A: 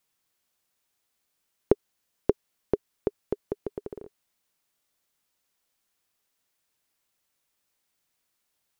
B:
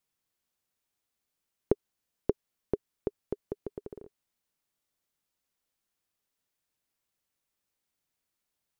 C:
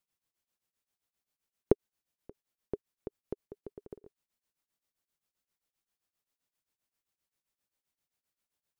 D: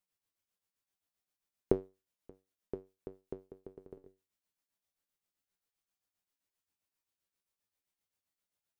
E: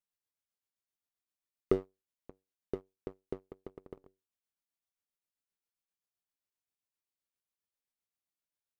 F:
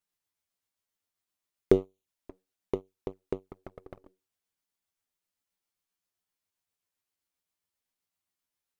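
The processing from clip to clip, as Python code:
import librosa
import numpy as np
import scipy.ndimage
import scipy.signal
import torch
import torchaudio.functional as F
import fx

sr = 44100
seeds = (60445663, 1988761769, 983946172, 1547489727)

y1 = fx.low_shelf(x, sr, hz=390.0, db=5.0)
y1 = y1 * librosa.db_to_amplitude(-7.5)
y2 = fx.level_steps(y1, sr, step_db=11)
y2 = y2 * np.abs(np.cos(np.pi * 7.6 * np.arange(len(y2)) / sr))
y2 = y2 * librosa.db_to_amplitude(2.0)
y3 = fx.comb_fb(y2, sr, f0_hz=95.0, decay_s=0.26, harmonics='all', damping=0.0, mix_pct=80)
y3 = y3 * librosa.db_to_amplitude(4.0)
y4 = fx.leveller(y3, sr, passes=2)
y4 = y4 * librosa.db_to_amplitude(-3.5)
y5 = fx.env_flanger(y4, sr, rest_ms=11.6, full_db=-40.0)
y5 = y5 * librosa.db_to_amplitude(8.0)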